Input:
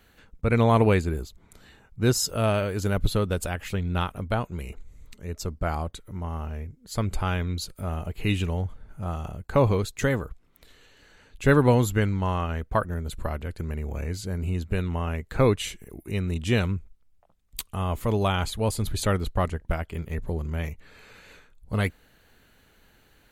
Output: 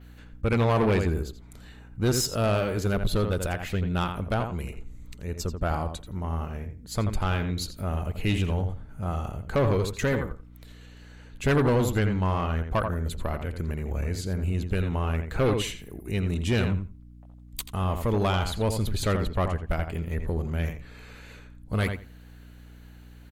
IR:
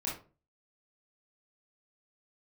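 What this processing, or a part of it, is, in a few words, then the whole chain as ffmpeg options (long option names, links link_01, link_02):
valve amplifier with mains hum: -filter_complex "[0:a]asettb=1/sr,asplit=3[link_01][link_02][link_03];[link_01]atrim=end=5.324[link_04];[link_02]atrim=start=5.32:end=6.17,asetpts=PTS-STARTPTS,afade=type=in:duration=0.004:curve=qsin,afade=type=out:start_time=0.846:duration=0.004:curve=qsin,bandreject=frequency=2100:width=9.7[link_05];[link_03]atrim=start=6.166[link_06];[link_04][link_05]acrossfade=duration=0.004:curve1=hsin:curve2=qsin[link_07];[link_07][link_06]acrossfade=duration=0.004:curve1=qsin:curve2=hsin,adynamicequalizer=threshold=0.00282:dfrequency=9200:dqfactor=0.83:tfrequency=9200:tqfactor=0.83:attack=5:release=100:ratio=0.375:range=2.5:mode=cutabove:tftype=bell,asplit=2[link_08][link_09];[link_09]adelay=85,lowpass=frequency=3300:poles=1,volume=-8dB,asplit=2[link_10][link_11];[link_11]adelay=85,lowpass=frequency=3300:poles=1,volume=0.17,asplit=2[link_12][link_13];[link_13]adelay=85,lowpass=frequency=3300:poles=1,volume=0.17[link_14];[link_08][link_10][link_12][link_14]amix=inputs=4:normalize=0,aeval=exprs='(tanh(8.91*val(0)+0.25)-tanh(0.25))/8.91':channel_layout=same,aeval=exprs='val(0)+0.00398*(sin(2*PI*60*n/s)+sin(2*PI*2*60*n/s)/2+sin(2*PI*3*60*n/s)/3+sin(2*PI*4*60*n/s)/4+sin(2*PI*5*60*n/s)/5)':channel_layout=same,volume=1.5dB"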